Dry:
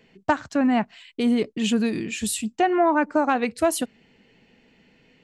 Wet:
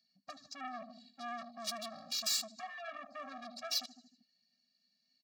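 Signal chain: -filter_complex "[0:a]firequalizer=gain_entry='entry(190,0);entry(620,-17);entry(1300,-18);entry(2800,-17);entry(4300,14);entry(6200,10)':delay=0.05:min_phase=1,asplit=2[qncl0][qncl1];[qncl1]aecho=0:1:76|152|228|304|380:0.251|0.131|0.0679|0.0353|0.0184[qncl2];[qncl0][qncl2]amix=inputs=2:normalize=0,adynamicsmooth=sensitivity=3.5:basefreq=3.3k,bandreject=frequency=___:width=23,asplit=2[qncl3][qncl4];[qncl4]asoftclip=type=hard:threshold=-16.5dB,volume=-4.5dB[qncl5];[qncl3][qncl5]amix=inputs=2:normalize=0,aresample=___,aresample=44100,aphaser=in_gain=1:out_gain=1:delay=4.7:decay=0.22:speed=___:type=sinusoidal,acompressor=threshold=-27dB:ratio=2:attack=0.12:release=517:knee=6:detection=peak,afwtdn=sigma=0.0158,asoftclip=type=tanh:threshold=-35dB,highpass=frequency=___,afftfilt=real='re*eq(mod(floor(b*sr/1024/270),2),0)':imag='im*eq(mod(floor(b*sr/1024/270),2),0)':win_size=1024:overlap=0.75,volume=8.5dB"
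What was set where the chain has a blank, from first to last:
3.5k, 16000, 1.1, 990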